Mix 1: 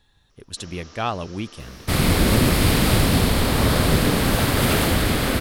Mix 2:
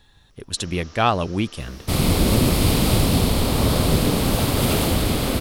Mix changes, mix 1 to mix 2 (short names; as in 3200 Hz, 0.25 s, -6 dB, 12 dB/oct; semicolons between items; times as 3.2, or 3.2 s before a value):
speech +6.5 dB; second sound: add bell 1700 Hz -9 dB 0.78 oct